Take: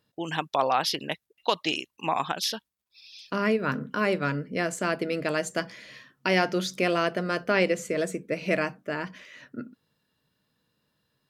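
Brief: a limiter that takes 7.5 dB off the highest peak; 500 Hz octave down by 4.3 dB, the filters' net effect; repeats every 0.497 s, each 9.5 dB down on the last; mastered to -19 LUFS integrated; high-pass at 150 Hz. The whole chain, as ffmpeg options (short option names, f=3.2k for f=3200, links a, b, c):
-af "highpass=150,equalizer=f=500:t=o:g=-5.5,alimiter=limit=-17dB:level=0:latency=1,aecho=1:1:497|994|1491|1988:0.335|0.111|0.0365|0.012,volume=12.5dB"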